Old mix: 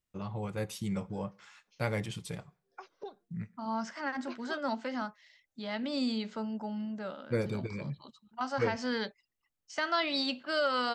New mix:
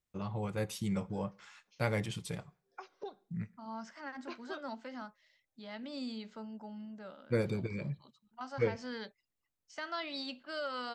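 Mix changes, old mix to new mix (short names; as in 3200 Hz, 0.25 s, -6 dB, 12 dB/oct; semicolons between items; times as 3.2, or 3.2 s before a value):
second voice -9.0 dB; background: send on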